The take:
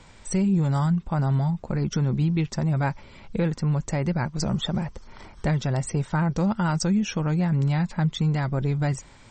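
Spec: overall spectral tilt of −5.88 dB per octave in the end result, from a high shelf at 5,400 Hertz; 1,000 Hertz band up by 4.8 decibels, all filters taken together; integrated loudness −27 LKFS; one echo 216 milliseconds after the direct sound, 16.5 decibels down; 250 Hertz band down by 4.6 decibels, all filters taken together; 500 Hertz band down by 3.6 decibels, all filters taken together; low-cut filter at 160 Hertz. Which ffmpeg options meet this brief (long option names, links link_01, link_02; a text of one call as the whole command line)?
ffmpeg -i in.wav -af "highpass=160,equalizer=frequency=250:width_type=o:gain=-3.5,equalizer=frequency=500:width_type=o:gain=-6,equalizer=frequency=1000:width_type=o:gain=8.5,highshelf=frequency=5400:gain=-8,aecho=1:1:216:0.15,volume=1.5dB" out.wav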